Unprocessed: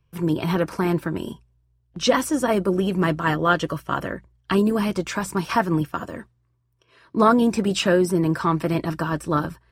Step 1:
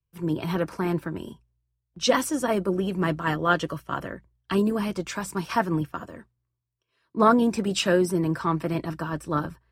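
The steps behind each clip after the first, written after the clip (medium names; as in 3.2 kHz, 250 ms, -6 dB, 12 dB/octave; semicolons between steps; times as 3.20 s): three bands expanded up and down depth 40%; trim -4 dB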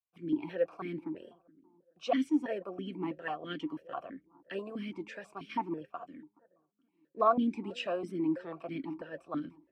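bucket-brigade echo 423 ms, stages 4096, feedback 37%, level -22.5 dB; stepped vowel filter 6.1 Hz; trim +1 dB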